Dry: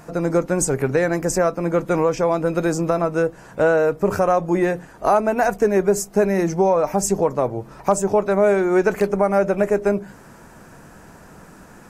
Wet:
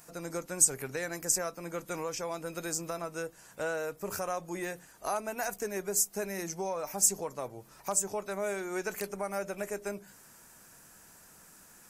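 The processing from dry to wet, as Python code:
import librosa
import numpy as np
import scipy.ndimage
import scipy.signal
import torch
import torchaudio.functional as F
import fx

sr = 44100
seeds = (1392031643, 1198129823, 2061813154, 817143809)

y = librosa.effects.preemphasis(x, coef=0.9, zi=[0.0])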